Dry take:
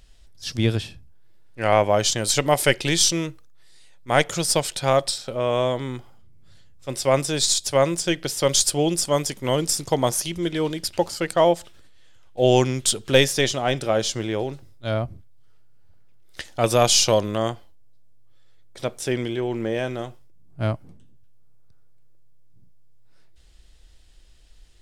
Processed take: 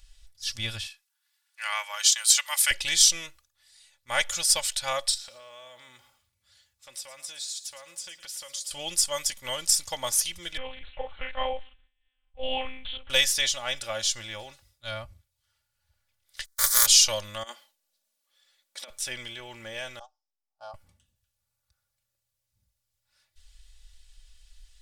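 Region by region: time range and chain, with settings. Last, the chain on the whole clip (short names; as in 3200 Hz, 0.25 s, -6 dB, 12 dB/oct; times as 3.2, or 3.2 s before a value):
0.86–2.71 HPF 960 Hz 24 dB/oct + high shelf 4700 Hz +3.5 dB
5.14–8.71 HPF 200 Hz 6 dB/oct + compressor 4:1, threshold -36 dBFS + lo-fi delay 0.112 s, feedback 35%, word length 10-bit, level -14 dB
10.57–13.1 air absorption 360 m + doubler 43 ms -3 dB + monotone LPC vocoder at 8 kHz 260 Hz
16.44–16.85 spectral contrast lowered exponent 0.22 + gate -36 dBFS, range -32 dB + fixed phaser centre 730 Hz, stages 6
17.43–18.9 negative-ratio compressor -29 dBFS, ratio -0.5 + brick-wall FIR high-pass 200 Hz
19.99–20.74 gate -32 dBFS, range -13 dB + double band-pass 2000 Hz, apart 2.8 oct + bell 1300 Hz +14 dB 1.9 oct
whole clip: passive tone stack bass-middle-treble 10-0-10; comb 3.5 ms, depth 71%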